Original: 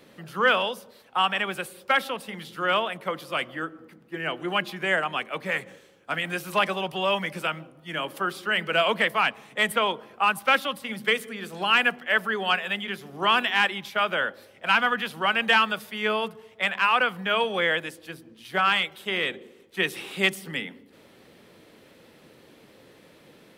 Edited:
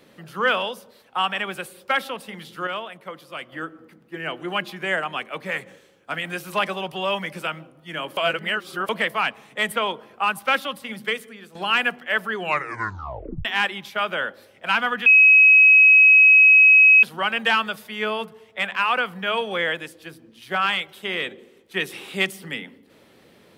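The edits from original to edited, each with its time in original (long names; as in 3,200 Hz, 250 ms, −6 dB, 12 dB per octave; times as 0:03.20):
0:02.67–0:03.52: clip gain −6.5 dB
0:08.17–0:08.89: reverse
0:10.91–0:11.55: fade out, to −11 dB
0:12.35: tape stop 1.10 s
0:15.06: insert tone 2,550 Hz −8.5 dBFS 1.97 s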